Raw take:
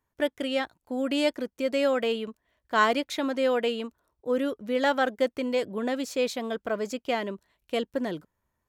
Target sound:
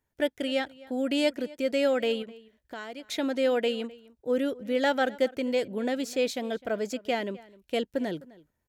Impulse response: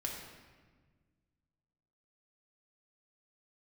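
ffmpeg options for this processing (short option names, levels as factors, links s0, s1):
-filter_complex "[0:a]equalizer=f=1100:w=4.1:g=-11,asettb=1/sr,asplit=3[s0][s1][s2];[s0]atrim=end=2.224[s3];[s1]atrim=start=2.22:end=3.04,asetpts=PTS-STARTPTS,afade=t=in:d=0.004:c=qsin,afade=t=out:st=0.816:d=0.004:c=qsin,acompressor=threshold=0.00794:ratio=3[s4];[s2]atrim=start=3.036[s5];[s3][s4]acrossfade=d=0.004:c1=hsin:c2=qsin[s6];[s6][s5]acrossfade=d=0.004:c1=qsin:c2=hsin,asplit=2[s7][s8];[s8]adelay=256.6,volume=0.0891,highshelf=f=4000:g=-5.77[s9];[s7][s9]amix=inputs=2:normalize=0"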